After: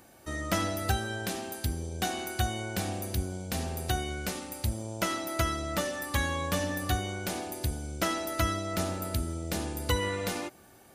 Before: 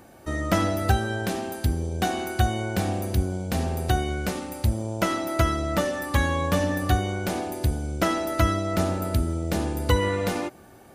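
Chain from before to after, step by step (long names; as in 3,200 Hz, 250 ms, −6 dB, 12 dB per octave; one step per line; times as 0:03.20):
high-shelf EQ 2,000 Hz +8.5 dB
level −8 dB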